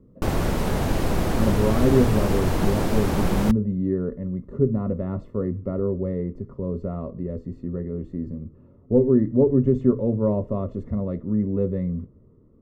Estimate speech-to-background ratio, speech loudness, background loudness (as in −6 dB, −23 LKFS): 0.5 dB, −24.5 LKFS, −25.0 LKFS